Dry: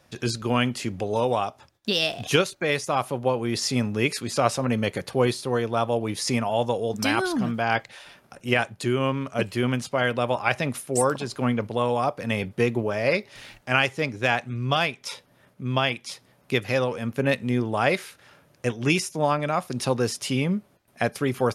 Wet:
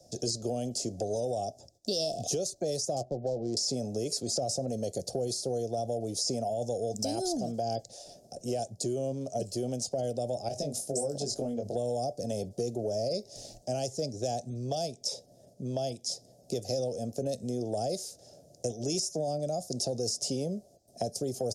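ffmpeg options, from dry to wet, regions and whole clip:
-filter_complex "[0:a]asettb=1/sr,asplit=3[s0][s1][s2];[s0]atrim=end=2.964[s3];[s1]atrim=start=2.96:end=3.57,asetpts=PTS-STARTPTS,afade=t=in:d=0.004:c=qsin,afade=t=out:st=0.606:d=0.004:c=qsin,highshelf=f=5400:g=-10.5,adynamicsmooth=sensitivity=2.5:basefreq=610,asplit=2[s4][s5];[s5]adelay=14,volume=0.211[s6];[s4][s6]amix=inputs=2:normalize=0,atrim=end_sample=26901[s7];[s2]atrim=start=3.566[s8];[s3][s7]acrossfade=d=0.004:c1=hsin:c2=qsin[s9];[s9][s8]acrossfade=d=0.004:c1=qsin:c2=hsin,asettb=1/sr,asplit=3[s10][s11][s12];[s10]atrim=end=10.484[s13];[s11]atrim=start=10.48:end=11.75,asetpts=PTS-STARTPTS,afade=t=in:d=0.004:c=qsin,afade=t=out:st=1.266:d=0.004:c=qsin,acompressor=threshold=0.0355:ratio=2.5:attack=3.2:release=140:knee=1:detection=peak,asplit=2[s14][s15];[s15]adelay=21,volume=0.708[s16];[s14][s16]amix=inputs=2:normalize=0,atrim=end_sample=56007[s17];[s12]atrim=start=11.746[s18];[s13][s17]acrossfade=d=0.004:c1=hsin:c2=qsin[s19];[s19][s18]acrossfade=d=0.004:c1=qsin:c2=hsin,firequalizer=gain_entry='entry(300,0);entry(690,8);entry(1000,-27);entry(2200,-27);entry(5100,7);entry(7200,8);entry(11000,-3)':delay=0.05:min_phase=1,alimiter=limit=0.168:level=0:latency=1:release=17,acrossover=split=96|340|4000[s20][s21][s22][s23];[s20]acompressor=threshold=0.00398:ratio=4[s24];[s21]acompressor=threshold=0.01:ratio=4[s25];[s22]acompressor=threshold=0.0224:ratio=4[s26];[s23]acompressor=threshold=0.0224:ratio=4[s27];[s24][s25][s26][s27]amix=inputs=4:normalize=0"

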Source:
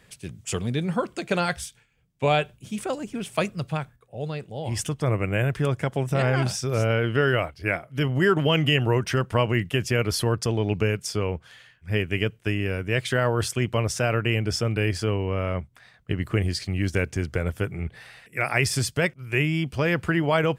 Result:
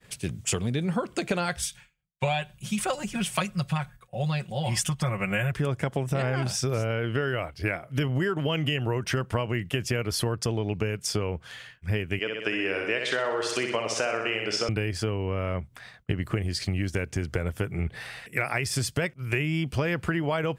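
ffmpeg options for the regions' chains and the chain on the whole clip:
-filter_complex "[0:a]asettb=1/sr,asplit=3[s0][s1][s2];[s0]atrim=end=1.624[s3];[s1]atrim=start=1.62:end=5.52,asetpts=PTS-STARTPTS,afade=t=in:d=0.004:c=qsin,afade=t=out:st=3.896:d=0.004:c=qsin,equalizer=f=350:t=o:w=1.3:g=-12.5,aecho=1:1:5.5:0.87,atrim=end_sample=171990[s4];[s2]atrim=start=5.516[s5];[s3][s4]acrossfade=d=0.004:c1=hsin:c2=qsin[s6];[s6][s5]acrossfade=d=0.004:c1=qsin:c2=hsin,asettb=1/sr,asplit=3[s7][s8][s9];[s7]atrim=end=12.194[s10];[s8]atrim=start=12.19:end=14.69,asetpts=PTS-STARTPTS,afade=t=in:d=0.004:c=qsin,afade=t=out:st=2.496:d=0.004:c=qsin,highpass=400,lowpass=5900,aecho=1:1:62|124|186|248|310|372|434:0.531|0.276|0.144|0.0746|0.0388|0.0202|0.0105,atrim=end_sample=110250[s11];[s9]atrim=start=14.686[s12];[s10][s11]acrossfade=d=0.004:c1=hsin:c2=qsin[s13];[s13][s12]acrossfade=d=0.004:c1=qsin:c2=hsin,agate=range=0.0224:threshold=0.00251:ratio=3:detection=peak,acompressor=threshold=0.0316:ratio=10,volume=2.11"

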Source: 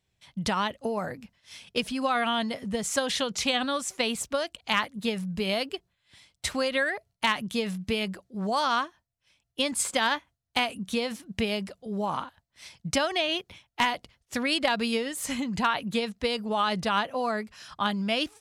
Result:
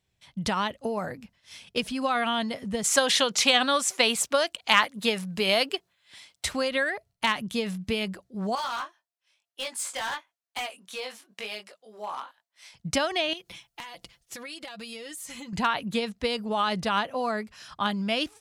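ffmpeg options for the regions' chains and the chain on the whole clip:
-filter_complex "[0:a]asettb=1/sr,asplit=3[s0][s1][s2];[s0]atrim=end=2.844[s3];[s1]atrim=start=2.84:end=6.45,asetpts=PTS-STARTPTS,afade=t=in:d=0.004:c=qsin,afade=t=out:st=3.606:d=0.004:c=qsin,highpass=f=480:p=1,acontrast=72[s4];[s2]atrim=start=6.446[s5];[s3][s4]acrossfade=d=0.004:c1=hsin:c2=qsin[s6];[s6][s5]acrossfade=d=0.004:c1=qsin:c2=hsin,asettb=1/sr,asplit=3[s7][s8][s9];[s7]atrim=end=8.554[s10];[s8]atrim=start=8.55:end=12.74,asetpts=PTS-STARTPTS,afade=t=in:d=0.004:c=qsin,afade=t=out:st=4.186:d=0.004:c=qsin,highpass=620,flanger=delay=18.5:depth=5.1:speed=1,asoftclip=type=hard:threshold=0.0447[s11];[s9]atrim=start=12.736[s12];[s10][s11]acrossfade=d=0.004:c1=hsin:c2=qsin[s13];[s13][s12]acrossfade=d=0.004:c1=qsin:c2=hsin,asettb=1/sr,asplit=3[s14][s15][s16];[s14]atrim=end=13.334[s17];[s15]atrim=start=13.33:end=15.53,asetpts=PTS-STARTPTS,afade=t=in:d=0.004:c=qsin,afade=t=out:st=2.196:d=0.004:c=qsin,highshelf=f=3400:g=9,aecho=1:1:5.9:0.62,atrim=end_sample=97020,acompressor=threshold=0.0141:ratio=8:attack=3.2:release=140:knee=1:detection=peak[s18];[s16]atrim=start=15.526[s19];[s17][s18]acrossfade=d=0.004:c1=hsin:c2=qsin[s20];[s20][s19]acrossfade=d=0.004:c1=qsin:c2=hsin"

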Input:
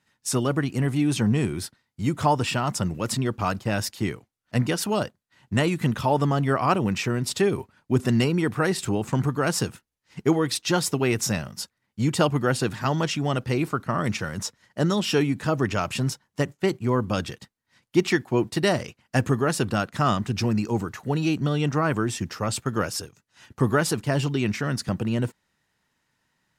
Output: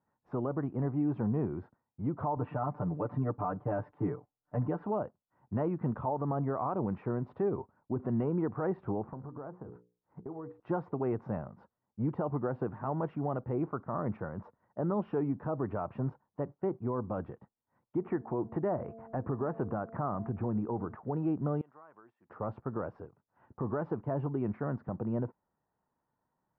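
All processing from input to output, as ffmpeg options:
-filter_complex "[0:a]asettb=1/sr,asplit=3[s0][s1][s2];[s0]atrim=end=2.364[s3];[s1]atrim=start=2.36:end=4.85,asetpts=PTS-STARTPTS,afade=t=in:d=0.004:c=qsin,afade=t=out:st=2.486:d=0.004:c=qsin,lowpass=3200,aecho=1:1:6.8:0.98,atrim=end_sample=109809[s4];[s2]atrim=start=4.846[s5];[s3][s4]acrossfade=d=0.004:c1=hsin:c2=qsin[s6];[s6][s5]acrossfade=d=0.004:c1=qsin:c2=hsin,asettb=1/sr,asplit=3[s7][s8][s9];[s7]atrim=end=9.074[s10];[s8]atrim=start=9.07:end=10.6,asetpts=PTS-STARTPTS,afade=t=in:d=0.004:c=qsin,afade=t=out:st=1.526:d=0.004:c=qsin,bandreject=f=60:t=h:w=6,bandreject=f=120:t=h:w=6,bandreject=f=180:t=h:w=6,bandreject=f=240:t=h:w=6,bandreject=f=300:t=h:w=6,bandreject=f=360:t=h:w=6,bandreject=f=420:t=h:w=6,bandreject=f=480:t=h:w=6,bandreject=f=540:t=h:w=6,acompressor=threshold=0.0282:ratio=16:attack=3.2:release=140:knee=1:detection=peak,lowpass=1600[s11];[s9]atrim=start=10.596[s12];[s10][s11]acrossfade=d=0.004:c1=hsin:c2=qsin[s13];[s13][s12]acrossfade=d=0.004:c1=qsin:c2=hsin,asettb=1/sr,asplit=3[s14][s15][s16];[s14]atrim=end=17.974[s17];[s15]atrim=start=17.97:end=20.95,asetpts=PTS-STARTPTS,afade=t=in:d=0.004:c=qsin,afade=t=out:st=2.976:d=0.004:c=qsin,lowpass=f=2500:w=0.5412,lowpass=f=2500:w=1.3066,bandreject=f=225.1:t=h:w=4,bandreject=f=450.2:t=h:w=4,bandreject=f=675.3:t=h:w=4,acompressor=mode=upward:threshold=0.0794:ratio=2.5:attack=3.2:release=140:knee=2.83:detection=peak[s18];[s16]atrim=start=20.946[s19];[s17][s18]acrossfade=d=0.004:c1=hsin:c2=qsin[s20];[s20][s19]acrossfade=d=0.004:c1=qsin:c2=hsin,asettb=1/sr,asplit=3[s21][s22][s23];[s21]atrim=end=21.614[s24];[s22]atrim=start=21.61:end=22.3,asetpts=PTS-STARTPTS,afade=t=in:d=0.004:c=qsin,afade=t=out:st=0.686:d=0.004:c=qsin,aderivative,acompressor=threshold=0.00891:ratio=5:attack=3.2:release=140:knee=1:detection=peak[s25];[s23]atrim=start=22.296[s26];[s24][s25]acrossfade=d=0.004:c1=hsin:c2=qsin[s27];[s27][s26]acrossfade=d=0.004:c1=qsin:c2=hsin,lowpass=f=1000:w=0.5412,lowpass=f=1000:w=1.3066,lowshelf=f=480:g=-9.5,alimiter=limit=0.0708:level=0:latency=1:release=69"

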